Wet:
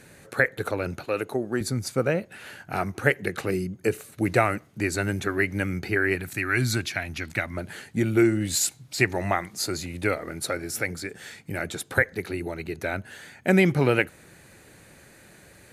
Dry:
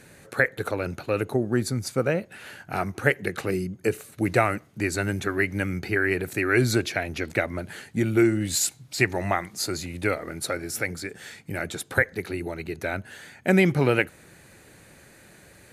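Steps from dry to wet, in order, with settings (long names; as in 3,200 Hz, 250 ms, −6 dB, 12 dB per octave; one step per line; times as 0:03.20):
0:01.05–0:01.61: high-pass filter 330 Hz 6 dB per octave
0:06.15–0:07.57: parametric band 460 Hz −12 dB 1.1 octaves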